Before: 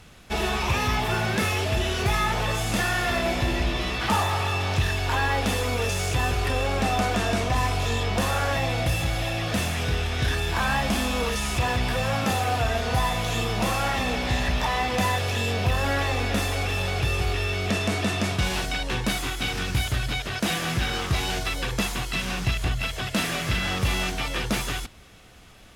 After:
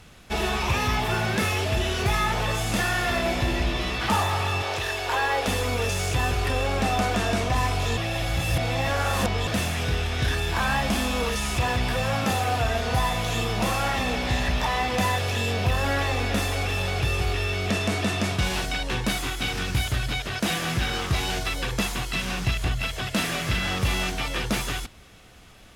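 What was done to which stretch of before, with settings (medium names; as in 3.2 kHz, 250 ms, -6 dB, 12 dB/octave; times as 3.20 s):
4.62–5.48 s: resonant low shelf 300 Hz -11.5 dB, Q 1.5
7.97–9.47 s: reverse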